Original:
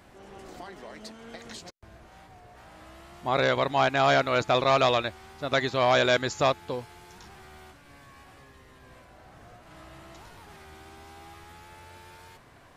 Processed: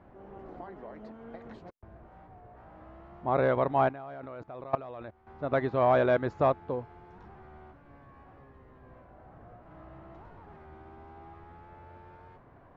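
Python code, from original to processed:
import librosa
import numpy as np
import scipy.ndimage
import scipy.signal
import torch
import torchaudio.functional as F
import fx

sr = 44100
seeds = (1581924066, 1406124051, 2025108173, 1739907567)

y = scipy.signal.sosfilt(scipy.signal.butter(2, 1100.0, 'lowpass', fs=sr, output='sos'), x)
y = fx.level_steps(y, sr, step_db=21, at=(3.89, 5.27))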